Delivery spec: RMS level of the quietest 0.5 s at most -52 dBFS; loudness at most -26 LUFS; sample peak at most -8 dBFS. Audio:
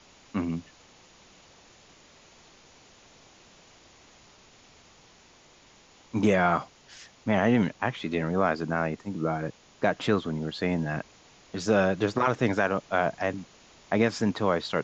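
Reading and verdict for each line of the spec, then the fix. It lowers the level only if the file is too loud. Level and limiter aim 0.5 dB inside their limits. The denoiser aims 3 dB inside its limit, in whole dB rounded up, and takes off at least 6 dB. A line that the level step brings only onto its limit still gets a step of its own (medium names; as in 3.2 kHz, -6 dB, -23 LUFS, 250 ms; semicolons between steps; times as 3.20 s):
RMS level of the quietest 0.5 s -57 dBFS: pass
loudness -27.5 LUFS: pass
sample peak -9.5 dBFS: pass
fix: none needed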